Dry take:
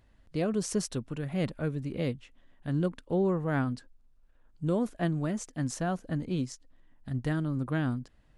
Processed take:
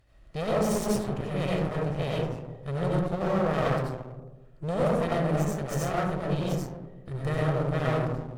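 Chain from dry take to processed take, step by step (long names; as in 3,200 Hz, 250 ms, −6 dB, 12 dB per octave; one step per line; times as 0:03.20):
lower of the sound and its delayed copy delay 1.6 ms
comb and all-pass reverb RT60 1.1 s, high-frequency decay 0.3×, pre-delay 50 ms, DRR −5.5 dB
asymmetric clip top −33.5 dBFS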